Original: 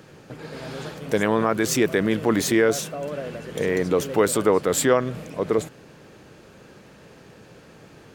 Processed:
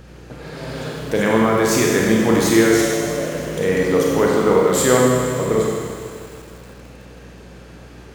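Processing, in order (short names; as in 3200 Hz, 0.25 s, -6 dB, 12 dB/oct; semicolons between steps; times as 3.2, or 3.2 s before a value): 4.14–4.67 air absorption 180 m; Schroeder reverb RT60 1.7 s, combs from 32 ms, DRR -2.5 dB; hum 60 Hz, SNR 24 dB; lo-fi delay 0.159 s, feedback 80%, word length 6-bit, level -14 dB; gain +1 dB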